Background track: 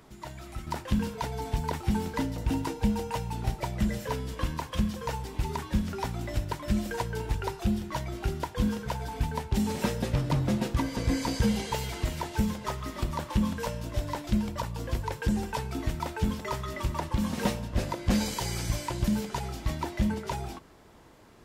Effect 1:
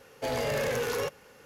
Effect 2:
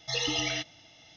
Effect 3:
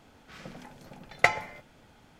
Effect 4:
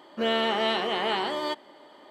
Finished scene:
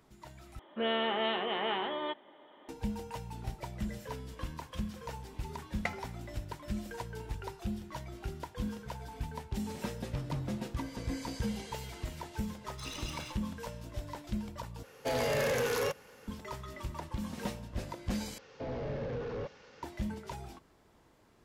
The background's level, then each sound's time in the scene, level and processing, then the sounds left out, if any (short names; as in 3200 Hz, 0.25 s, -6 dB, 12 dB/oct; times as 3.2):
background track -9.5 dB
0.59 replace with 4 -6 dB + downsampling 8000 Hz
4.61 add 3 -14.5 dB
12.7 add 2 -12 dB + minimum comb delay 0.79 ms
14.83 replace with 1 -1 dB
18.38 replace with 1 -2 dB + delta modulation 32 kbps, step -54.5 dBFS